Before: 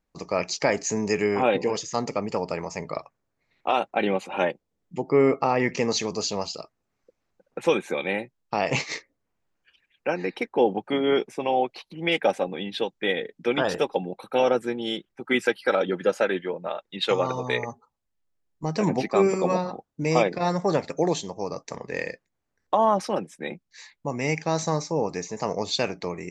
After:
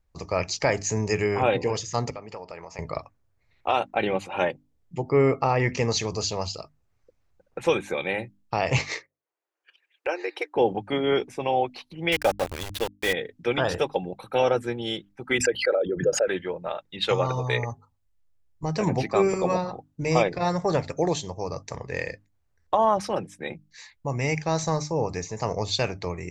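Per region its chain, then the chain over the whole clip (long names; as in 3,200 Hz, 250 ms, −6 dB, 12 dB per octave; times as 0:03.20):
0:02.10–0:02.79: high-pass filter 430 Hz 6 dB per octave + high-frequency loss of the air 91 metres + downward compressor 2 to 1, threshold −39 dBFS
0:08.78–0:10.55: noise gate −58 dBFS, range −13 dB + linear-phase brick-wall high-pass 300 Hz + multiband upward and downward compressor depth 40%
0:12.12–0:13.13: variable-slope delta modulation 64 kbit/s + parametric band 1,700 Hz +3.5 dB 0.69 octaves + centre clipping without the shift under −28 dBFS
0:15.38–0:16.28: spectral envelope exaggerated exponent 2 + background raised ahead of every attack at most 140 dB per second
whole clip: low shelf with overshoot 140 Hz +11.5 dB, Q 1.5; mains-hum notches 50/100/150/200/250/300 Hz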